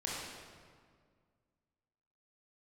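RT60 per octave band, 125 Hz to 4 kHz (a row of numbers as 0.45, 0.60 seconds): 2.4, 2.3, 2.0, 1.8, 1.5, 1.3 seconds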